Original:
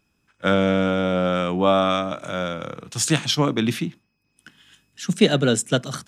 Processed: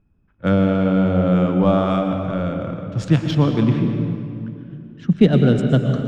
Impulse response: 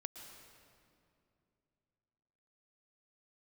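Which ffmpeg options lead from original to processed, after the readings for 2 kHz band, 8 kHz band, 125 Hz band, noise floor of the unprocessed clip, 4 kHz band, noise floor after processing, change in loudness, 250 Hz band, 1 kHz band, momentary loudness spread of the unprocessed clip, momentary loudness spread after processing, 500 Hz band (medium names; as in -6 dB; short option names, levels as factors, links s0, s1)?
-4.5 dB, under -15 dB, +9.0 dB, -71 dBFS, -9.0 dB, -60 dBFS, +3.0 dB, +6.0 dB, -2.0 dB, 11 LU, 12 LU, +1.0 dB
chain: -filter_complex "[0:a]adynamicsmooth=sensitivity=2:basefreq=2600,aemphasis=mode=reproduction:type=riaa[s0];[1:a]atrim=start_sample=2205[s1];[s0][s1]afir=irnorm=-1:irlink=0,volume=1.19"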